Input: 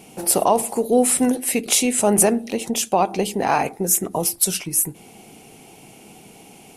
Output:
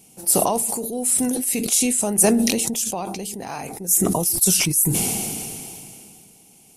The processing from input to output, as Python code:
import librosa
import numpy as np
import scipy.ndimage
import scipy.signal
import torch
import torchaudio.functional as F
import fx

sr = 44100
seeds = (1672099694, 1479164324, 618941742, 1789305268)

y = fx.bass_treble(x, sr, bass_db=7, treble_db=14)
y = fx.sustainer(y, sr, db_per_s=22.0)
y = F.gain(torch.from_numpy(y), -14.0).numpy()